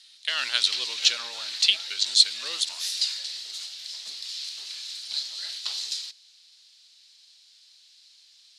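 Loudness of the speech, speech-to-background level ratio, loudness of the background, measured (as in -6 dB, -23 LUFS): -23.0 LUFS, 8.0 dB, -31.0 LUFS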